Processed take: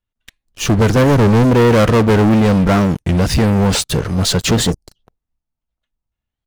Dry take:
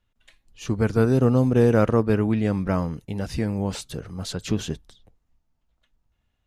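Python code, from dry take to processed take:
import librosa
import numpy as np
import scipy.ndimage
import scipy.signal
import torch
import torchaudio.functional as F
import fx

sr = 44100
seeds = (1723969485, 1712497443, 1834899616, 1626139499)

y = fx.spec_erase(x, sr, start_s=4.72, length_s=0.24, low_hz=940.0, high_hz=4600.0)
y = fx.leveller(y, sr, passes=5)
y = fx.record_warp(y, sr, rpm=33.33, depth_cents=250.0)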